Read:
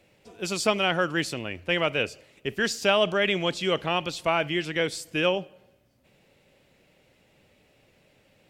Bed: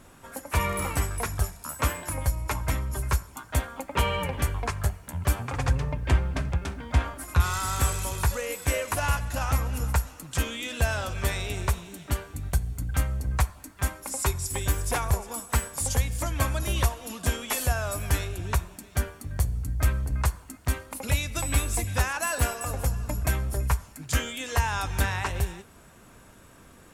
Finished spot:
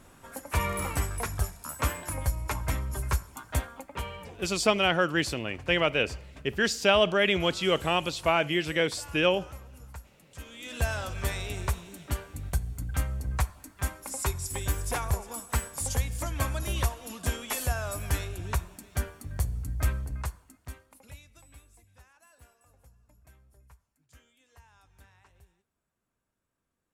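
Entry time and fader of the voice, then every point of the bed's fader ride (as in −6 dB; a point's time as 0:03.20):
4.00 s, 0.0 dB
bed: 0:03.55 −2.5 dB
0:04.46 −19.5 dB
0:10.34 −19.5 dB
0:10.76 −3.5 dB
0:19.90 −3.5 dB
0:21.78 −32 dB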